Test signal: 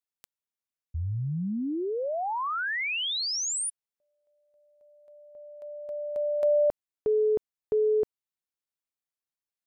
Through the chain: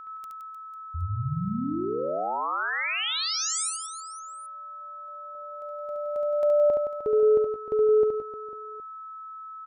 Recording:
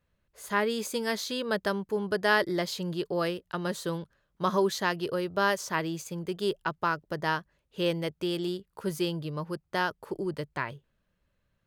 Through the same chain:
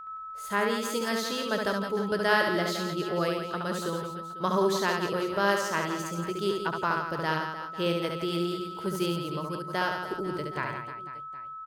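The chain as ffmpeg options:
-af "aeval=exprs='val(0)+0.0112*sin(2*PI*1300*n/s)':c=same,aecho=1:1:70|168|305.2|497.3|766.2:0.631|0.398|0.251|0.158|0.1,volume=0.891"

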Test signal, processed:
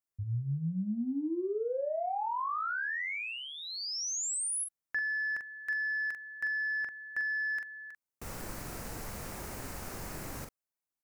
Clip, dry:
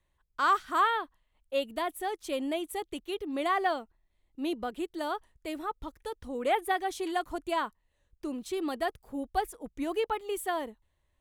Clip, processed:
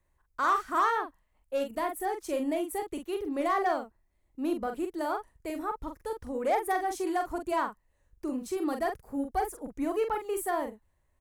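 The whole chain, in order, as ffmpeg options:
-filter_complex "[0:a]asoftclip=type=tanh:threshold=0.0794,equalizer=f=3400:w=1.7:g=-11,asplit=2[s0][s1];[s1]adelay=43,volume=0.501[s2];[s0][s2]amix=inputs=2:normalize=0,volume=1.26"

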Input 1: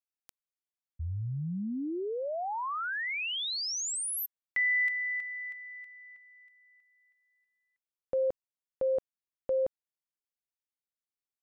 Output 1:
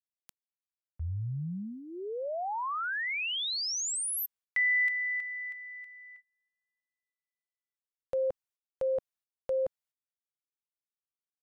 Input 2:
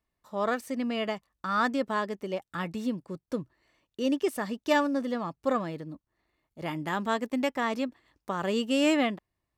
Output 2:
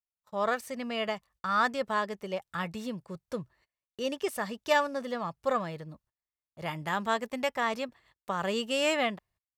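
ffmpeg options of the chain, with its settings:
-af "agate=range=0.0447:threshold=0.00224:ratio=16:release=167:detection=rms,equalizer=f=290:w=2.1:g=-13,volume=1.12"

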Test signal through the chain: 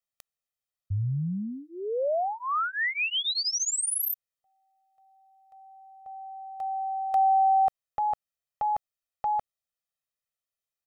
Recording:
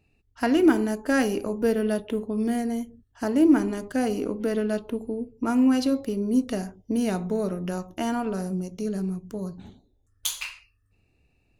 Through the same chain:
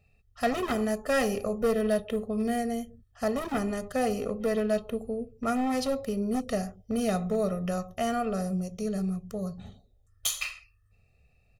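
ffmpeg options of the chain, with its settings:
-af "asoftclip=type=hard:threshold=0.112,aecho=1:1:1.6:1,volume=0.75"

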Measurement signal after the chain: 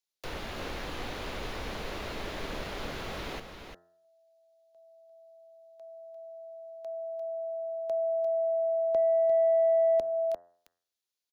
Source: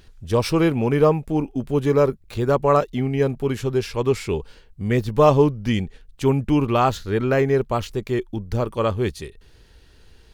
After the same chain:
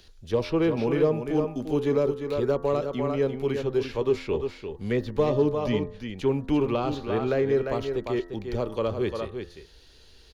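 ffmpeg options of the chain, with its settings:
-filter_complex "[0:a]acrossover=split=120|2800[s0][s1][s2];[s2]acompressor=threshold=0.002:ratio=12[s3];[s0][s1][s3]amix=inputs=3:normalize=0,equalizer=f=8200:t=o:w=0.25:g=-15,aecho=1:1:348:0.398,asoftclip=type=tanh:threshold=0.668,bandreject=f=86.98:t=h:w=4,bandreject=f=173.96:t=h:w=4,bandreject=f=260.94:t=h:w=4,bandreject=f=347.92:t=h:w=4,bandreject=f=434.9:t=h:w=4,bandreject=f=521.88:t=h:w=4,bandreject=f=608.86:t=h:w=4,bandreject=f=695.84:t=h:w=4,bandreject=f=782.82:t=h:w=4,bandreject=f=869.8:t=h:w=4,bandreject=f=956.78:t=h:w=4,bandreject=f=1043.76:t=h:w=4,bandreject=f=1130.74:t=h:w=4,bandreject=f=1217.72:t=h:w=4,bandreject=f=1304.7:t=h:w=4,bandreject=f=1391.68:t=h:w=4,bandreject=f=1478.66:t=h:w=4,bandreject=f=1565.64:t=h:w=4,bandreject=f=1652.62:t=h:w=4,bandreject=f=1739.6:t=h:w=4,bandreject=f=1826.58:t=h:w=4,bandreject=f=1913.56:t=h:w=4,acrossover=split=470|3000[s4][s5][s6];[s5]acompressor=threshold=0.0447:ratio=6[s7];[s4][s7][s6]amix=inputs=3:normalize=0,equalizer=f=125:t=o:w=1:g=-5,equalizer=f=500:t=o:w=1:g=4,equalizer=f=4000:t=o:w=1:g=8,equalizer=f=8000:t=o:w=1:g=10,volume=0.562"

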